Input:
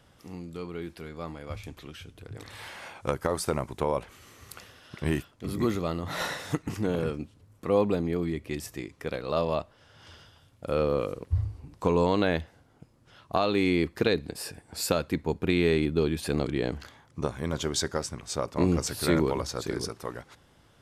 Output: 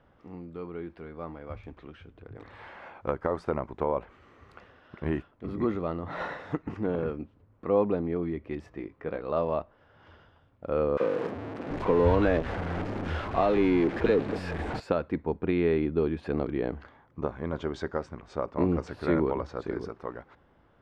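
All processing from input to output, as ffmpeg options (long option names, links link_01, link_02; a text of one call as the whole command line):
ffmpeg -i in.wav -filter_complex "[0:a]asettb=1/sr,asplit=3[link_01][link_02][link_03];[link_01]atrim=end=8.694[link_04];[link_02]atrim=start=8.69:end=9.21,asetpts=PTS-STARTPTS,afade=type=in:duration=0.004:curve=qsin,afade=type=out:start_time=0.516:duration=0.004:curve=qsin,equalizer=frequency=11000:width_type=o:width=1.4:gain=-13,asplit=2[link_05][link_06];[link_06]adelay=19,volume=-9.5dB[link_07];[link_05][link_07]amix=inputs=2:normalize=0,atrim=end_sample=22932[link_08];[link_03]atrim=start=9.206[link_09];[link_04][link_08]acrossfade=duration=0.004:curve1=hsin:curve2=qsin[link_10];[link_10][link_09]acrossfade=duration=0.004:curve1=qsin:curve2=hsin,asettb=1/sr,asplit=3[link_11][link_12][link_13];[link_11]atrim=end=10.974[link_14];[link_12]atrim=start=10.97:end=14.8,asetpts=PTS-STARTPTS,afade=type=in:duration=0.004:curve=qsin,afade=type=out:start_time=3.826:duration=0.004:curve=qsin,aeval=exprs='val(0)+0.5*0.0668*sgn(val(0))':channel_layout=same,acrossover=split=150|1100[link_15][link_16][link_17];[link_16]adelay=30[link_18];[link_15]adelay=730[link_19];[link_19][link_18][link_17]amix=inputs=3:normalize=0,atrim=end_sample=168903[link_20];[link_13]atrim=start=14.796[link_21];[link_14][link_20]acrossfade=duration=0.004:curve1=hsin:curve2=qsin[link_22];[link_22][link_21]acrossfade=duration=0.004:curve1=qsin:curve2=hsin,lowpass=1600,equalizer=frequency=120:width=1.3:gain=-6" out.wav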